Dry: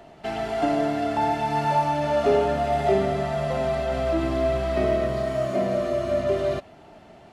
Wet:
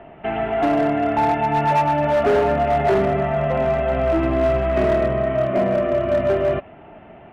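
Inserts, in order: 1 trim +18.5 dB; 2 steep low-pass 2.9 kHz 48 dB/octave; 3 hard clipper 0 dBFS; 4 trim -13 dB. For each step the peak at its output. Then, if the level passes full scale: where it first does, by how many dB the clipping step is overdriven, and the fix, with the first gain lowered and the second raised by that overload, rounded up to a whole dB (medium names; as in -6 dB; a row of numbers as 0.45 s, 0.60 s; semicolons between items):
+9.5 dBFS, +9.5 dBFS, 0.0 dBFS, -13.0 dBFS; step 1, 9.5 dB; step 1 +8.5 dB, step 4 -3 dB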